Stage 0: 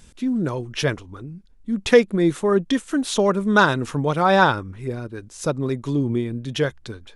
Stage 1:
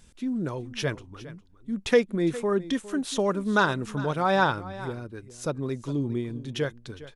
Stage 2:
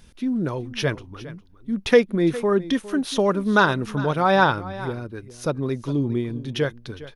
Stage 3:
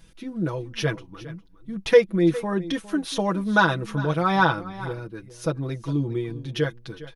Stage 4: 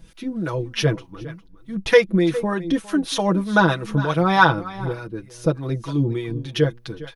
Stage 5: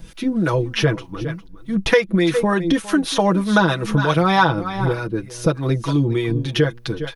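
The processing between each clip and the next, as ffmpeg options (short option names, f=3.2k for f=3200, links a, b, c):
-af "aecho=1:1:408:0.15,volume=-6.5dB"
-af "equalizer=f=7.6k:t=o:w=0.32:g=-12.5,volume=5dB"
-af "aecho=1:1:6.1:0.83,volume=-4dB"
-filter_complex "[0:a]acrossover=split=660[a][b];[a]aeval=exprs='val(0)*(1-0.7/2+0.7/2*cos(2*PI*3.3*n/s))':c=same[c];[b]aeval=exprs='val(0)*(1-0.7/2-0.7/2*cos(2*PI*3.3*n/s))':c=same[d];[c][d]amix=inputs=2:normalize=0,volume=7.5dB"
-filter_complex "[0:a]acrossover=split=950|1900[a][b][c];[a]acompressor=threshold=-23dB:ratio=4[d];[b]acompressor=threshold=-32dB:ratio=4[e];[c]acompressor=threshold=-33dB:ratio=4[f];[d][e][f]amix=inputs=3:normalize=0,volume=8dB"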